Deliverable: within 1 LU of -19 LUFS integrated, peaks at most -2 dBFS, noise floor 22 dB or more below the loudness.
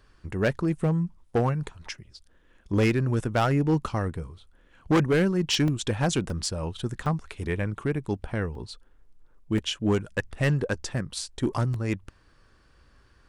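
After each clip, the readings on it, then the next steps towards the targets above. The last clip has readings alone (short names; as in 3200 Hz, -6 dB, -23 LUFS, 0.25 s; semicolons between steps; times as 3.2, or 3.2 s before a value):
clipped 1.1%; flat tops at -17.0 dBFS; dropouts 6; longest dropout 2.4 ms; loudness -27.0 LUFS; peak -17.0 dBFS; loudness target -19.0 LUFS
-> clip repair -17 dBFS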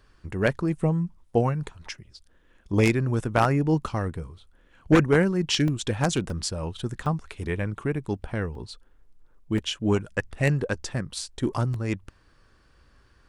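clipped 0.0%; dropouts 6; longest dropout 2.4 ms
-> interpolate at 5.68/6.3/7.06/8.55/9.58/11.74, 2.4 ms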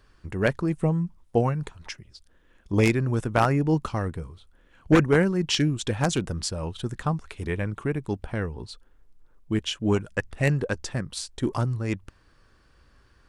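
dropouts 0; loudness -26.0 LUFS; peak -8.0 dBFS; loudness target -19.0 LUFS
-> gain +7 dB; limiter -2 dBFS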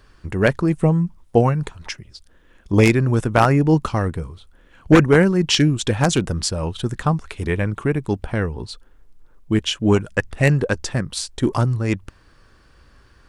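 loudness -19.5 LUFS; peak -2.0 dBFS; noise floor -53 dBFS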